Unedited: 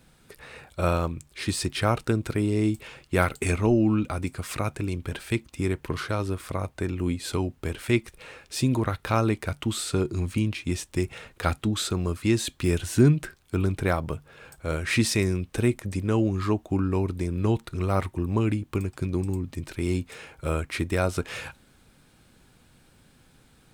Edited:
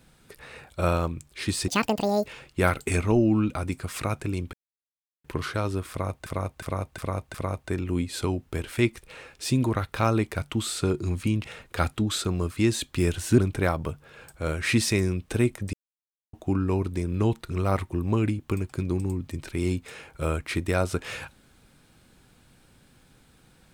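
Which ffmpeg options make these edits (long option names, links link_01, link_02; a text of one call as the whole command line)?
ffmpeg -i in.wav -filter_complex "[0:a]asplit=13[link_01][link_02][link_03][link_04][link_05][link_06][link_07][link_08][link_09][link_10][link_11][link_12][link_13];[link_01]atrim=end=1.684[link_14];[link_02]atrim=start=1.68:end=2.81,asetpts=PTS-STARTPTS,asetrate=85554,aresample=44100,atrim=end_sample=25687,asetpts=PTS-STARTPTS[link_15];[link_03]atrim=start=2.806:end=5.08,asetpts=PTS-STARTPTS,afade=type=out:start_time=2.27:duration=0.004:curve=hsin[link_16];[link_04]atrim=start=5.08:end=5.79,asetpts=PTS-STARTPTS,volume=0[link_17];[link_05]atrim=start=5.79:end=6.812,asetpts=PTS-STARTPTS,afade=type=in:duration=0.004:curve=hsin[link_18];[link_06]atrim=start=6.448:end=6.812[link_19];[link_07]atrim=start=6.448:end=6.812[link_20];[link_08]atrim=start=6.448:end=6.812[link_21];[link_09]atrim=start=6.448:end=10.552[link_22];[link_10]atrim=start=11.098:end=13.042[link_23];[link_11]atrim=start=13.618:end=15.97,asetpts=PTS-STARTPTS,afade=type=out:start_time=2.348:duration=0.004:curve=hsin[link_24];[link_12]atrim=start=15.97:end=16.57,asetpts=PTS-STARTPTS,volume=0[link_25];[link_13]atrim=start=16.57,asetpts=PTS-STARTPTS,afade=type=in:duration=0.004:curve=hsin[link_26];[link_14][link_15]acrossfade=duration=0.004:curve1=hsin:curve2=hsin[link_27];[link_16][link_17][link_18]concat=n=3:v=0:a=1[link_28];[link_27][link_28]acrossfade=duration=0.004:curve1=hsin:curve2=hsin[link_29];[link_29][link_19]acrossfade=duration=0.004:curve1=hsin:curve2=hsin[link_30];[link_30][link_20]acrossfade=duration=0.004:curve1=hsin:curve2=hsin[link_31];[link_31][link_21]acrossfade=duration=0.004:curve1=hsin:curve2=hsin[link_32];[link_32][link_22]acrossfade=duration=0.004:curve1=hsin:curve2=hsin[link_33];[link_33][link_23]acrossfade=duration=0.004:curve1=hsin:curve2=hsin[link_34];[link_24][link_25][link_26]concat=n=3:v=0:a=1[link_35];[link_34][link_35]acrossfade=duration=0.004:curve1=hsin:curve2=hsin" out.wav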